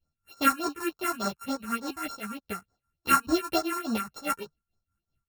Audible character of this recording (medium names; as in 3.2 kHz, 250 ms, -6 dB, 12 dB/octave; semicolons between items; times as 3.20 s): a buzz of ramps at a fixed pitch in blocks of 32 samples; phasing stages 4, 3.4 Hz, lowest notch 510–2800 Hz; tremolo triangle 4.9 Hz, depth 85%; a shimmering, thickened sound